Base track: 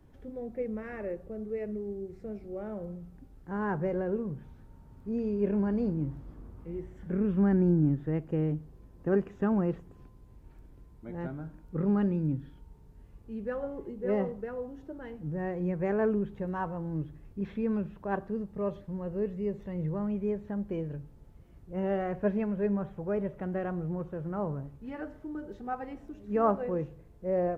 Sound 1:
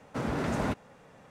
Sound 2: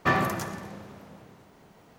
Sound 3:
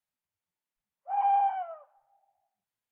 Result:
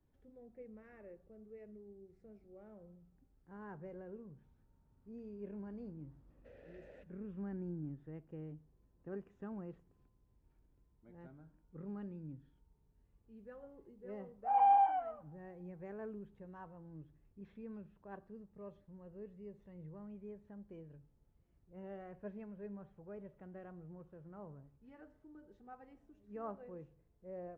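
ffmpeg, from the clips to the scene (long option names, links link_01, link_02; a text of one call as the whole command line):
ffmpeg -i bed.wav -i cue0.wav -i cue1.wav -i cue2.wav -filter_complex "[0:a]volume=-18.5dB[link_01];[1:a]asplit=3[link_02][link_03][link_04];[link_02]bandpass=frequency=530:width_type=q:width=8,volume=0dB[link_05];[link_03]bandpass=frequency=1840:width_type=q:width=8,volume=-6dB[link_06];[link_04]bandpass=frequency=2480:width_type=q:width=8,volume=-9dB[link_07];[link_05][link_06][link_07]amix=inputs=3:normalize=0[link_08];[3:a]lowshelf=frequency=500:gain=9.5[link_09];[link_08]atrim=end=1.3,asetpts=PTS-STARTPTS,volume=-15.5dB,afade=type=in:duration=0.004:curve=hsin,afade=type=out:start_time=1.296:duration=0.004:curve=hsin,adelay=6300[link_10];[link_09]atrim=end=2.91,asetpts=PTS-STARTPTS,volume=-5dB,afade=type=in:duration=0.004:curve=hsin,afade=type=out:start_time=2.906:duration=0.004:curve=hsin,adelay=13370[link_11];[link_01][link_10][link_11]amix=inputs=3:normalize=0" out.wav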